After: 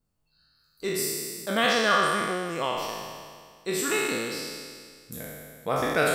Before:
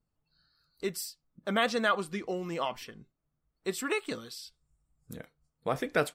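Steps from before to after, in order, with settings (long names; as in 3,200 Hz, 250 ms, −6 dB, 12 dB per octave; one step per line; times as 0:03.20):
peak hold with a decay on every bin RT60 1.92 s
high-shelf EQ 5,000 Hz +5.5 dB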